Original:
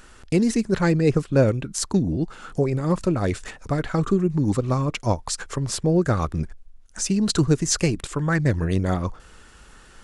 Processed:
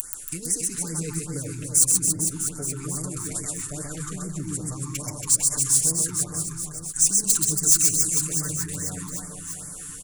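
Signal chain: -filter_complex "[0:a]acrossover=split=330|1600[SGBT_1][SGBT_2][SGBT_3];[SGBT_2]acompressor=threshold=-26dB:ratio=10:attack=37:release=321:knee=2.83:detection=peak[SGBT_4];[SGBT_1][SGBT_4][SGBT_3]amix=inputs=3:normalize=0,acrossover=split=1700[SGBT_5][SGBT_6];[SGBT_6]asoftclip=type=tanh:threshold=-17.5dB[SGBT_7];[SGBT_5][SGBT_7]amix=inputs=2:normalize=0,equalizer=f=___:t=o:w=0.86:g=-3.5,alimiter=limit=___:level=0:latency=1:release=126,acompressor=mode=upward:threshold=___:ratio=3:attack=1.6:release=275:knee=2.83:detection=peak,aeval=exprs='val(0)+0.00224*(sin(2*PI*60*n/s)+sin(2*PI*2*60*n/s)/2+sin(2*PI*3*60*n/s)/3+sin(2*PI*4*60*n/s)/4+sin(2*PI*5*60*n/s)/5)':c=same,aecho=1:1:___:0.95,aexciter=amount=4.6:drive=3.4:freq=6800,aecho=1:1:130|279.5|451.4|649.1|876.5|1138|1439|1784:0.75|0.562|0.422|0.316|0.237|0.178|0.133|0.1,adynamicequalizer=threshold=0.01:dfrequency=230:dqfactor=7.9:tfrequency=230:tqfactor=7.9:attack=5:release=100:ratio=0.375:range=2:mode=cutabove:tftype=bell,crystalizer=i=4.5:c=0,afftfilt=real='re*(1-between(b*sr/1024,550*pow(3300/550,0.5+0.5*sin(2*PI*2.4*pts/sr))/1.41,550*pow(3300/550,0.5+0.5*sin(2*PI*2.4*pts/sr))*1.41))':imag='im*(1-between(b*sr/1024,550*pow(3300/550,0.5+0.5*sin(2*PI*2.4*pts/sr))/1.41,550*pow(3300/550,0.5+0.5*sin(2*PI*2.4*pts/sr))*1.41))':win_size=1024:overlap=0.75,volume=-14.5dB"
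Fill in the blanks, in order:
3700, -16dB, -33dB, 6.7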